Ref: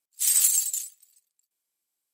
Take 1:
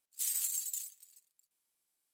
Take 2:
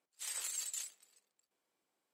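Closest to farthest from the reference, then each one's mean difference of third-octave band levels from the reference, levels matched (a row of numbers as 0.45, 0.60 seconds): 1, 2; 2.0, 8.5 decibels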